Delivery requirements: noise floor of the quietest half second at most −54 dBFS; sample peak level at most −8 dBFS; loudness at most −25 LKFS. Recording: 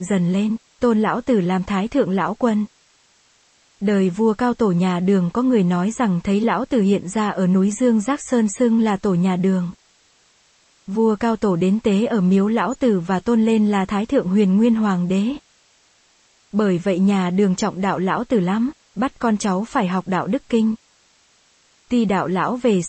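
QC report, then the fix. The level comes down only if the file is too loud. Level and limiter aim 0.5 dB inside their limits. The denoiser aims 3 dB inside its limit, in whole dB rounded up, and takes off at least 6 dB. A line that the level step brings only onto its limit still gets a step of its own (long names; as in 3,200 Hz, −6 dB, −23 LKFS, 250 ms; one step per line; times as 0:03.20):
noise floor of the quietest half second −57 dBFS: in spec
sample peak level −6.0 dBFS: out of spec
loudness −19.0 LKFS: out of spec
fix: level −6.5 dB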